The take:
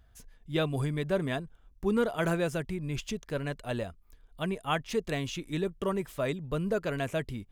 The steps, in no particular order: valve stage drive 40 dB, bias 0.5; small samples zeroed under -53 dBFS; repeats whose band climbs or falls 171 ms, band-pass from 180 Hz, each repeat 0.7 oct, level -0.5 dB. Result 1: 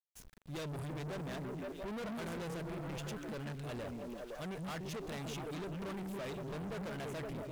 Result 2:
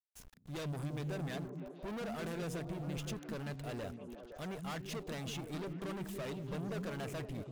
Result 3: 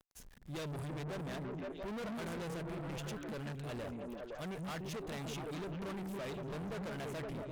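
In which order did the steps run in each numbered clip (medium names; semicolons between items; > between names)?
repeats whose band climbs or falls > valve stage > small samples zeroed; valve stage > small samples zeroed > repeats whose band climbs or falls; small samples zeroed > repeats whose band climbs or falls > valve stage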